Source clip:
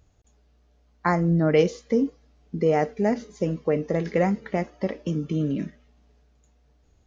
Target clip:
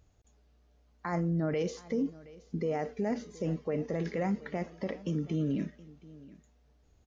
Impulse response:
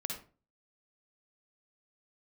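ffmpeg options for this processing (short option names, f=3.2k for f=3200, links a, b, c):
-af "alimiter=limit=-19.5dB:level=0:latency=1:release=25,aecho=1:1:722:0.0944,volume=-4dB"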